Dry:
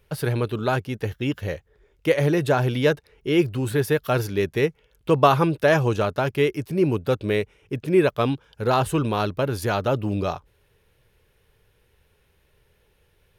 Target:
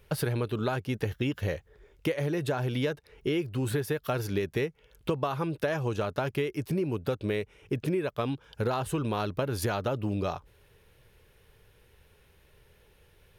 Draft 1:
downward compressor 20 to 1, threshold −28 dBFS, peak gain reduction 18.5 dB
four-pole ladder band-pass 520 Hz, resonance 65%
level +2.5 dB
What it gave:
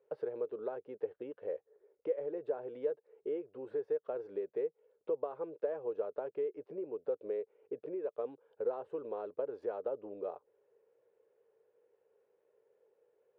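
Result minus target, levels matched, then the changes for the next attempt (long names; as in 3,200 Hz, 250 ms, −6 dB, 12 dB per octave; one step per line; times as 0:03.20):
500 Hz band +4.0 dB
remove: four-pole ladder band-pass 520 Hz, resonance 65%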